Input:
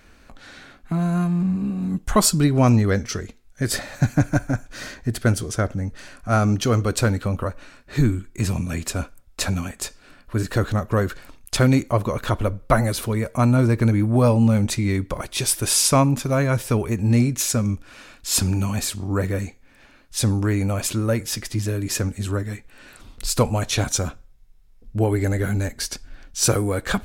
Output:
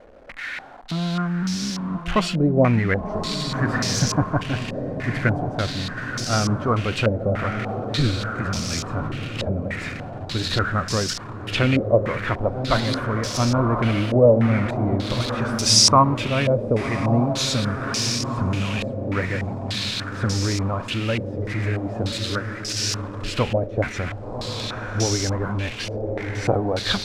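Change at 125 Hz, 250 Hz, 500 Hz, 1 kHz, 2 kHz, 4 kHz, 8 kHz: −2.0, −2.0, +2.0, +2.5, +3.0, +5.5, −2.5 decibels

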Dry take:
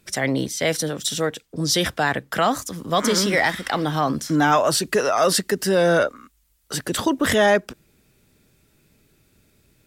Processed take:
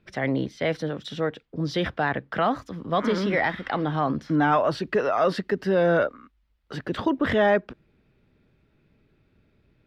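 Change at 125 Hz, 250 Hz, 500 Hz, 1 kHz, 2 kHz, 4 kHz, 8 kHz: −2.0 dB, −2.5 dB, −3.0 dB, −3.5 dB, −5.0 dB, −11.5 dB, below −25 dB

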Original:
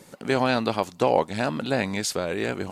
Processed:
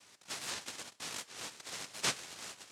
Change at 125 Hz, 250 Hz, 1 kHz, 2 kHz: −24.5, −27.5, −21.0, −13.0 decibels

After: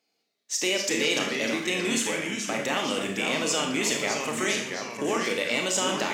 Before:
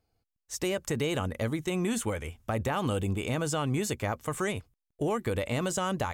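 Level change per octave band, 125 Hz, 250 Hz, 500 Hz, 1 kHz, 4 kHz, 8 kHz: −9.5, +1.5, +3.0, +3.0, +12.5, +9.5 decibels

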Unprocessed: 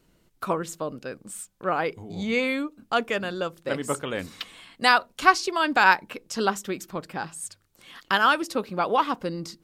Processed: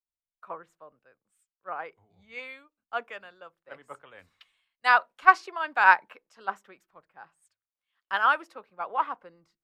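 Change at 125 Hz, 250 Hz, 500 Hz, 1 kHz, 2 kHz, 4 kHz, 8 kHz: below −25 dB, below −20 dB, −12.5 dB, −1.5 dB, −1.5 dB, −12.0 dB, below −20 dB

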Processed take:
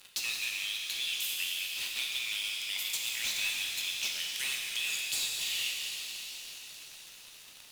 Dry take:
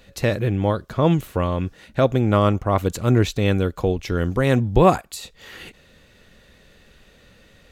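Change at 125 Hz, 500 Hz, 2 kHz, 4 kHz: below −40 dB, −39.5 dB, −2.0 dB, +6.0 dB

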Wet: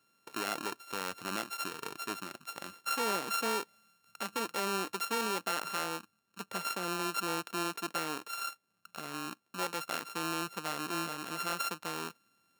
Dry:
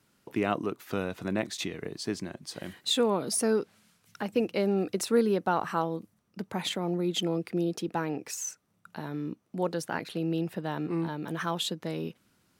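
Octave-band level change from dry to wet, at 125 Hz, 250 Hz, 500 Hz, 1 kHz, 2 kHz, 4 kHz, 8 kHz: −13.5, −11.5, −10.5, −0.5, +1.5, −3.5, −3.0 decibels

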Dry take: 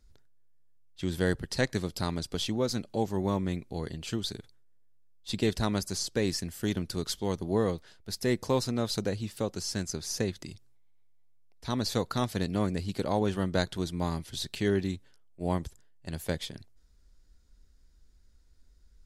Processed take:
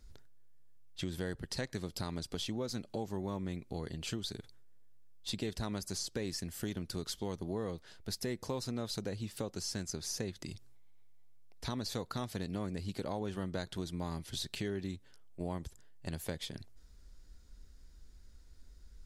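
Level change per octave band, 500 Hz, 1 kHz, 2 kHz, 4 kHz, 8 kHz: −9.5, −9.5, −9.0, −5.5, −5.0 decibels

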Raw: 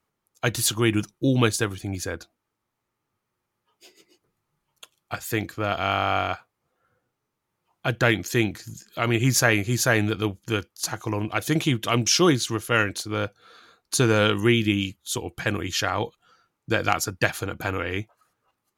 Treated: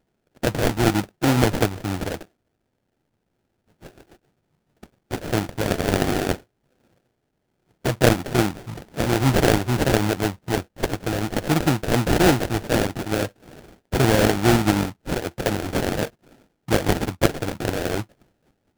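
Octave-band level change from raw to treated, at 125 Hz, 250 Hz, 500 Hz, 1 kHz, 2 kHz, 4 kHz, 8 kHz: +3.0, +3.5, +3.5, +2.0, −2.0, −1.5, −3.5 decibels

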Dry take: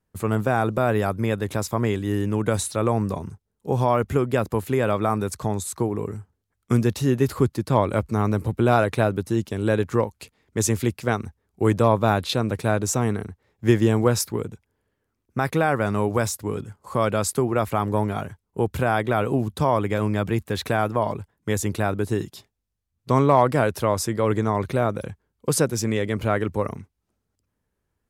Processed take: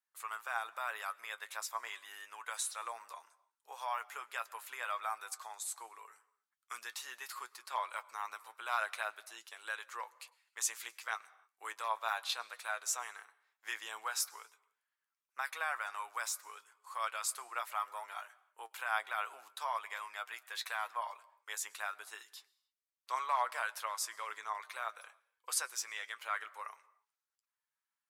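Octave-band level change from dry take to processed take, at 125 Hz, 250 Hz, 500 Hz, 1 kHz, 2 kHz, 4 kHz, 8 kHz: below −40 dB, below −40 dB, −28.5 dB, −12.5 dB, −8.5 dB, −8.5 dB, −8.5 dB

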